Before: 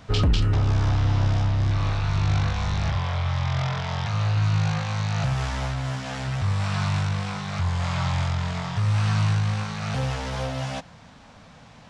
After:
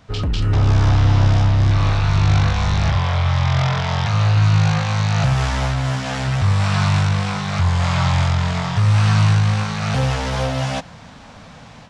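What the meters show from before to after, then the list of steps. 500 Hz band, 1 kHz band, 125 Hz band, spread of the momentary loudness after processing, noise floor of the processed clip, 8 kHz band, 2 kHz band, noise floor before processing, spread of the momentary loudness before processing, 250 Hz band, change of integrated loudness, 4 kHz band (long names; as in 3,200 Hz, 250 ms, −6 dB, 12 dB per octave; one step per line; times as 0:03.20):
+7.0 dB, +7.5 dB, +7.0 dB, 7 LU, −41 dBFS, +7.5 dB, +7.5 dB, −48 dBFS, 7 LU, +7.0 dB, +7.0 dB, +6.5 dB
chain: automatic gain control gain up to 11 dB
level −3 dB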